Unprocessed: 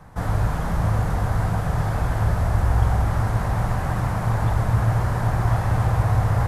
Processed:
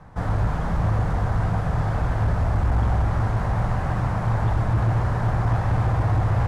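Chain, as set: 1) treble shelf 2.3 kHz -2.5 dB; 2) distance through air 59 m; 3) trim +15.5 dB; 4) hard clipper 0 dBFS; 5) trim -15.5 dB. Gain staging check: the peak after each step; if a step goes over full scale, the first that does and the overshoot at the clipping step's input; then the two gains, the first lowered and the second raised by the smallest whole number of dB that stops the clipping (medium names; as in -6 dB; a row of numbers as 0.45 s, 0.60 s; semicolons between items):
-6.0 dBFS, -6.0 dBFS, +9.5 dBFS, 0.0 dBFS, -15.5 dBFS; step 3, 9.5 dB; step 3 +5.5 dB, step 5 -5.5 dB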